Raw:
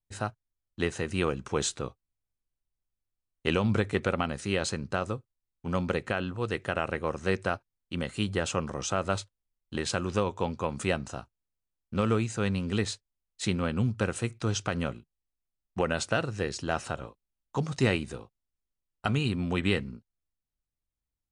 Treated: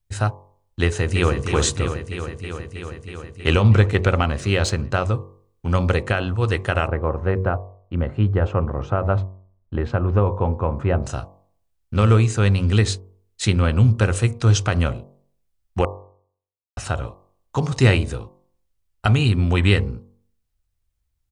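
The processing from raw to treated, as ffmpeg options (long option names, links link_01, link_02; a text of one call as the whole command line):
ffmpeg -i in.wav -filter_complex "[0:a]asplit=2[link_01][link_02];[link_02]afade=type=in:start_time=0.83:duration=0.01,afade=type=out:start_time=1.39:duration=0.01,aecho=0:1:320|640|960|1280|1600|1920|2240|2560|2880|3200|3520|3840:0.446684|0.357347|0.285877|0.228702|0.182962|0.146369|0.117095|0.0936763|0.0749411|0.0599529|0.0479623|0.0383698[link_03];[link_01][link_03]amix=inputs=2:normalize=0,asettb=1/sr,asplit=3[link_04][link_05][link_06];[link_04]atrim=end=3.614[link_07];[link_05]atrim=start=3.61:end=5.14,asetpts=PTS-STARTPTS,afade=type=in:duration=0.004:curve=qsin,afade=type=out:start_time=1.526:duration=0.004:curve=qsin,adynamicsmooth=sensitivity=6.5:basefreq=7800[link_08];[link_06]atrim=start=5.136[link_09];[link_07][link_08]acrossfade=duration=0.004:curve1=hsin:curve2=qsin[link_10];[link_10][link_09]acrossfade=duration=0.004:curve1=qsin:curve2=hsin,asettb=1/sr,asplit=3[link_11][link_12][link_13];[link_11]atrim=end=6.874[link_14];[link_12]atrim=start=6.87:end=11.03,asetpts=PTS-STARTPTS,afade=type=in:duration=0.004:curve=qsin,afade=type=out:start_time=4.156:duration=0.004:curve=qsin,lowpass=1200[link_15];[link_13]atrim=start=11.026[link_16];[link_14][link_15]acrossfade=duration=0.004:curve1=hsin:curve2=qsin[link_17];[link_17][link_16]acrossfade=duration=0.004:curve1=qsin:curve2=hsin,asplit=3[link_18][link_19][link_20];[link_18]atrim=end=15.85,asetpts=PTS-STARTPTS,afade=type=out:start_time=15.846:duration=0.004:curve=hsin[link_21];[link_19]atrim=start=15.85:end=16.77,asetpts=PTS-STARTPTS,volume=0[link_22];[link_20]atrim=start=16.77,asetpts=PTS-STARTPTS,afade=type=in:duration=0.004:curve=hsin[link_23];[link_21][link_22][link_23]concat=n=3:v=0:a=1,lowshelf=frequency=130:width_type=q:width=1.5:gain=8,bandreject=frequency=47.09:width_type=h:width=4,bandreject=frequency=94.18:width_type=h:width=4,bandreject=frequency=141.27:width_type=h:width=4,bandreject=frequency=188.36:width_type=h:width=4,bandreject=frequency=235.45:width_type=h:width=4,bandreject=frequency=282.54:width_type=h:width=4,bandreject=frequency=329.63:width_type=h:width=4,bandreject=frequency=376.72:width_type=h:width=4,bandreject=frequency=423.81:width_type=h:width=4,bandreject=frequency=470.9:width_type=h:width=4,bandreject=frequency=517.99:width_type=h:width=4,bandreject=frequency=565.08:width_type=h:width=4,bandreject=frequency=612.17:width_type=h:width=4,bandreject=frequency=659.26:width_type=h:width=4,bandreject=frequency=706.35:width_type=h:width=4,bandreject=frequency=753.44:width_type=h:width=4,bandreject=frequency=800.53:width_type=h:width=4,bandreject=frequency=847.62:width_type=h:width=4,bandreject=frequency=894.71:width_type=h:width=4,bandreject=frequency=941.8:width_type=h:width=4,bandreject=frequency=988.89:width_type=h:width=4,bandreject=frequency=1035.98:width_type=h:width=4,bandreject=frequency=1083.07:width_type=h:width=4,bandreject=frequency=1130.16:width_type=h:width=4,bandreject=frequency=1177.25:width_type=h:width=4,volume=8.5dB" out.wav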